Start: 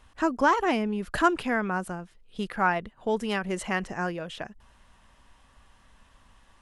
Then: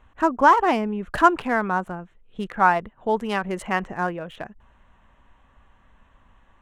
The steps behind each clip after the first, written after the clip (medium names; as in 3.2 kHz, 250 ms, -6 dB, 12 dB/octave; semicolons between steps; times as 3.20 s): local Wiener filter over 9 samples; dynamic bell 940 Hz, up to +7 dB, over -37 dBFS, Q 1.2; trim +2 dB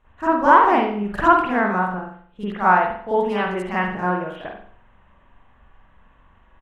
delay 72 ms -14.5 dB; reverberation, pre-delay 44 ms, DRR -10 dB; trim -8 dB